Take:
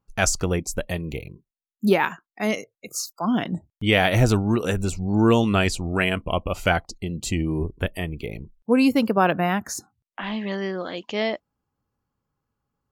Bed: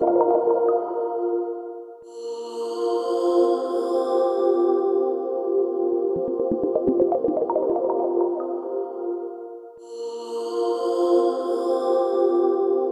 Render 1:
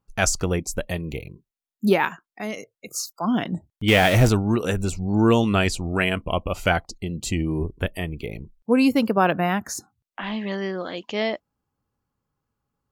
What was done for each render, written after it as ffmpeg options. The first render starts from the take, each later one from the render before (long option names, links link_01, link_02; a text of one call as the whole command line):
ffmpeg -i in.wav -filter_complex "[0:a]asplit=3[link_01][link_02][link_03];[link_01]afade=type=out:start_time=2.09:duration=0.02[link_04];[link_02]acompressor=threshold=-30dB:ratio=2:attack=3.2:release=140:knee=1:detection=peak,afade=type=in:start_time=2.09:duration=0.02,afade=type=out:start_time=2.93:duration=0.02[link_05];[link_03]afade=type=in:start_time=2.93:duration=0.02[link_06];[link_04][link_05][link_06]amix=inputs=3:normalize=0,asettb=1/sr,asplit=3[link_07][link_08][link_09];[link_07]atrim=end=3.884[link_10];[link_08]atrim=start=3.88:end=4.29,asetpts=PTS-STARTPTS,afade=type=in:duration=0.004:curve=qsin,afade=type=out:start_time=0.406:duration=0.004:curve=qsin,aeval=exprs='val(0)+0.5*0.0794*sgn(val(0))':channel_layout=same[link_11];[link_09]atrim=start=4.286[link_12];[link_10][link_11]acrossfade=duration=0.004:curve1=hsin:curve2=qsin[link_13];[link_13][link_12]acrossfade=duration=0.004:curve1=qsin:curve2=hsin" out.wav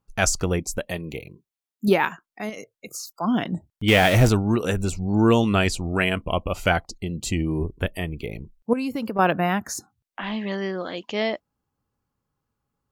ffmpeg -i in.wav -filter_complex "[0:a]asettb=1/sr,asplit=3[link_01][link_02][link_03];[link_01]atrim=end=0.784[link_04];[link_02]atrim=start=0.78:end=1.88,asetpts=PTS-STARTPTS,afade=type=in:duration=0.004:curve=qsin,afade=type=out:start_time=1.096:duration=0.004:curve=qsin,highpass=frequency=170:poles=1[link_05];[link_03]atrim=start=1.876[link_06];[link_04][link_05]acrossfade=duration=0.004:curve1=hsin:curve2=qsin[link_07];[link_07][link_06]acrossfade=duration=0.004:curve1=qsin:curve2=hsin,asettb=1/sr,asplit=3[link_08][link_09][link_10];[link_08]atrim=end=2.494[link_11];[link_09]atrim=start=2.49:end=3.17,asetpts=PTS-STARTPTS,afade=type=in:duration=0.004:curve=qsin,afade=type=out:start_time=0.676:duration=0.004:curve=qsin,acompressor=threshold=-30dB:ratio=6:attack=3.2:release=140:knee=1:detection=peak[link_12];[link_10]atrim=start=3.166[link_13];[link_11][link_12]acrossfade=duration=0.004:curve1=hsin:curve2=qsin[link_14];[link_14][link_13]acrossfade=duration=0.004:curve1=qsin:curve2=hsin,asettb=1/sr,asplit=3[link_15][link_16][link_17];[link_15]atrim=end=8.734[link_18];[link_16]atrim=start=8.73:end=9.19,asetpts=PTS-STARTPTS,afade=type=in:duration=0.004:curve=qsin,afade=type=out:start_time=0.456:duration=0.004:curve=qsin,acompressor=threshold=-24dB:ratio=6:attack=3.2:release=140:knee=1:detection=peak[link_19];[link_17]atrim=start=9.186[link_20];[link_18][link_19]acrossfade=duration=0.004:curve1=hsin:curve2=qsin[link_21];[link_21][link_20]acrossfade=duration=0.004:curve1=qsin:curve2=hsin" out.wav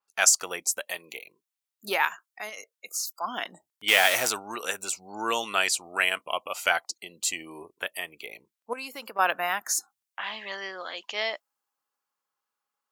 ffmpeg -i in.wav -af "highpass=890,adynamicequalizer=threshold=0.00794:dfrequency=5400:dqfactor=0.7:tfrequency=5400:tqfactor=0.7:attack=5:release=100:ratio=0.375:range=3.5:mode=boostabove:tftype=highshelf" out.wav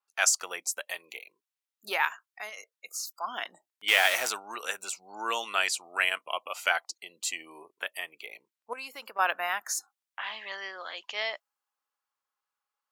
ffmpeg -i in.wav -af "highpass=frequency=820:poles=1,highshelf=frequency=4300:gain=-6.5" out.wav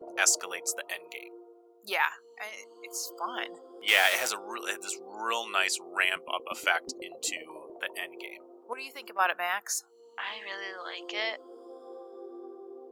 ffmpeg -i in.wav -i bed.wav -filter_complex "[1:a]volume=-25dB[link_01];[0:a][link_01]amix=inputs=2:normalize=0" out.wav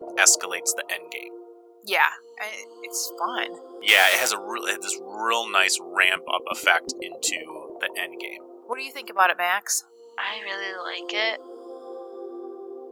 ffmpeg -i in.wav -af "volume=7.5dB,alimiter=limit=-1dB:level=0:latency=1" out.wav